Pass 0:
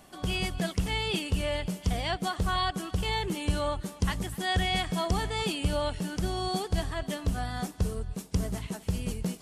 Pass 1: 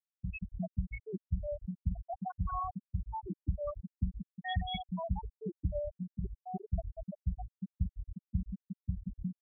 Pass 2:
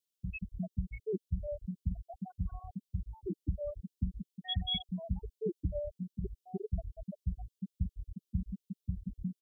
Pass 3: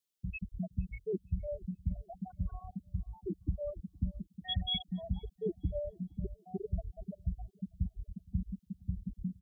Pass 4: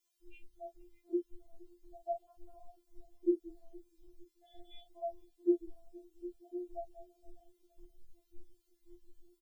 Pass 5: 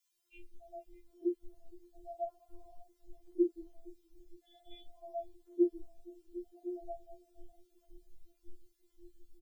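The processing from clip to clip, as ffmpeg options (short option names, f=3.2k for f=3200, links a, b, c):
-af "afftfilt=real='re*gte(hypot(re,im),0.224)':imag='im*gte(hypot(re,im),0.224)':win_size=1024:overlap=0.75,volume=-4.5dB"
-af "firequalizer=gain_entry='entry(150,0);entry(430,10);entry(970,-24);entry(3000,9)':delay=0.05:min_phase=1,volume=-1dB"
-filter_complex "[0:a]asplit=2[a][b];[b]adelay=466,lowpass=f=2.2k:p=1,volume=-24dB,asplit=2[c][d];[d]adelay=466,lowpass=f=2.2k:p=1,volume=0.4,asplit=2[e][f];[f]adelay=466,lowpass=f=2.2k:p=1,volume=0.4[g];[a][c][e][g]amix=inputs=4:normalize=0"
-filter_complex "[0:a]asplit=2[a][b];[b]adelay=31,volume=-7dB[c];[a][c]amix=inputs=2:normalize=0,afftfilt=real='re*4*eq(mod(b,16),0)':imag='im*4*eq(mod(b,16),0)':win_size=2048:overlap=0.75,volume=6.5dB"
-filter_complex "[0:a]acrossover=split=930[a][b];[a]adelay=120[c];[c][b]amix=inputs=2:normalize=0,volume=1dB"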